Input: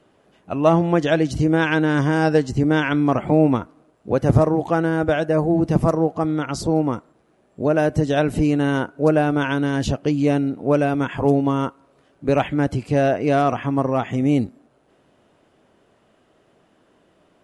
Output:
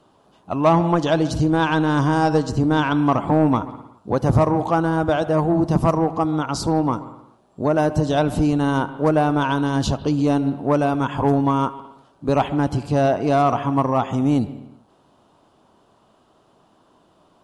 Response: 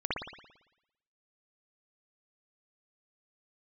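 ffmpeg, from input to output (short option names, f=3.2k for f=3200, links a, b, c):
-filter_complex "[0:a]equalizer=f=500:t=o:w=1:g=-4,equalizer=f=1k:t=o:w=1:g=9,equalizer=f=2k:t=o:w=1:g=-11,equalizer=f=4k:t=o:w=1:g=5,acontrast=73,asplit=2[a][b];[1:a]atrim=start_sample=2205,afade=t=out:st=0.41:d=0.01,atrim=end_sample=18522,adelay=73[c];[b][c]afir=irnorm=-1:irlink=0,volume=-22dB[d];[a][d]amix=inputs=2:normalize=0,volume=-5.5dB"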